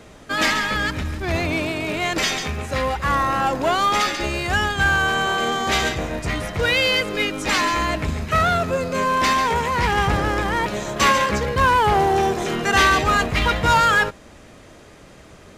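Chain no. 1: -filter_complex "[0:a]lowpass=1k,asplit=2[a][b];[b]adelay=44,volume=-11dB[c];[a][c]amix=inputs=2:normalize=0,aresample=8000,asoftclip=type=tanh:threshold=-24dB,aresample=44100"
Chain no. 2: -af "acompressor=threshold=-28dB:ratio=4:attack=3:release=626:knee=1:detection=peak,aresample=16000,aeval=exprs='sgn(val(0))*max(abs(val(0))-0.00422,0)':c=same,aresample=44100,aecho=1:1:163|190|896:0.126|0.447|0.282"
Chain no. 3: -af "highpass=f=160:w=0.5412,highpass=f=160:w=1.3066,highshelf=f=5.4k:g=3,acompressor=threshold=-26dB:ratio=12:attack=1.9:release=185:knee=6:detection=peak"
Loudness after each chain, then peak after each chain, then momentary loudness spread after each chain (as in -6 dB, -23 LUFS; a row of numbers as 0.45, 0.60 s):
-28.5, -31.0, -30.5 LUFS; -21.0, -18.5, -17.5 dBFS; 5, 4, 3 LU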